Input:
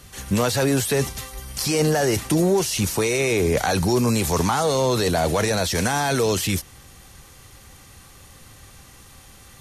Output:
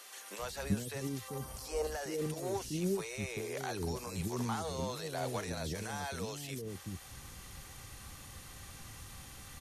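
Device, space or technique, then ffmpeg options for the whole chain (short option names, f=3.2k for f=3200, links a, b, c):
de-esser from a sidechain: -filter_complex "[0:a]asettb=1/sr,asplit=3[a][b][c];[a]atrim=end=1.284[d];[b]atrim=start=1.28:end=1.87,asetpts=PTS-STARTPTS,afade=t=in:d=0.004:c=qsin,afade=t=out:st=0.586:d=0.004:c=qsin,equalizer=f=125:t=o:w=1:g=-7,equalizer=f=500:t=o:w=1:g=10,equalizer=f=1k:t=o:w=1:g=7,equalizer=f=2k:t=o:w=1:g=-5,equalizer=f=4k:t=o:w=1:g=-3[e];[c]atrim=start=1.866[f];[d][e]acrossfade=d=0.004:c1=hsin:c2=qsin[g];[g][f]acrossfade=d=0.004:c1=qsin:c2=hsin,asplit=2[h][i];[i]highpass=4.7k,apad=whole_len=423693[j];[h][j]sidechaincompress=threshold=-45dB:ratio=4:attack=0.93:release=93,acrossover=split=430[k][l];[k]adelay=390[m];[m][l]amix=inputs=2:normalize=0,volume=-2.5dB"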